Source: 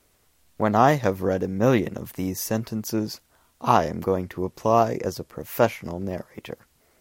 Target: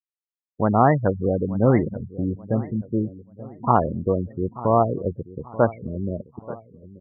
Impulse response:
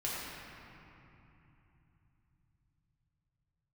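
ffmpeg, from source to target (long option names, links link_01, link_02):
-af "lowpass=3600,lowshelf=frequency=150:gain=8,afftfilt=real='re*gte(hypot(re,im),0.112)':imag='im*gte(hypot(re,im),0.112)':win_size=1024:overlap=0.75,aecho=1:1:883|1766|2649:0.141|0.0579|0.0237,afftdn=noise_reduction=15:noise_floor=-42"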